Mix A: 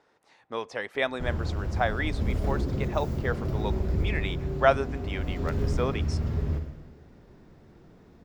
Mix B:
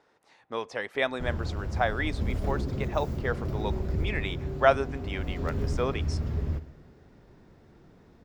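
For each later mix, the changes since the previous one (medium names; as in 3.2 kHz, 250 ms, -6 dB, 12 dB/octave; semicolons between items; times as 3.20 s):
background: send -9.0 dB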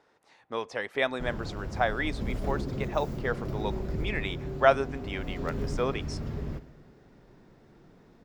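background: add peaking EQ 77 Hz -14 dB 0.42 oct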